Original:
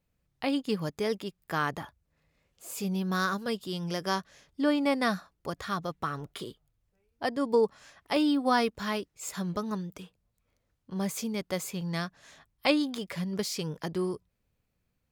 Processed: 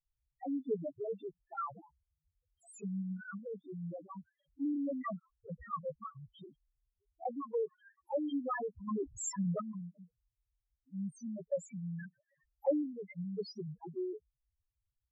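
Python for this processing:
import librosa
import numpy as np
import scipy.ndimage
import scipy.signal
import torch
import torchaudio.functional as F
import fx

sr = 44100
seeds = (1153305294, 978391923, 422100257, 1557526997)

y = fx.hpss(x, sr, part='percussive', gain_db=9)
y = fx.tilt_shelf(y, sr, db=-7.0, hz=730.0, at=(7.4, 8.34))
y = fx.spec_topn(y, sr, count=1)
y = fx.env_phaser(y, sr, low_hz=180.0, high_hz=3700.0, full_db=-31.0)
y = fx.env_flatten(y, sr, amount_pct=50, at=(8.87, 9.6), fade=0.02)
y = y * librosa.db_to_amplitude(-2.5)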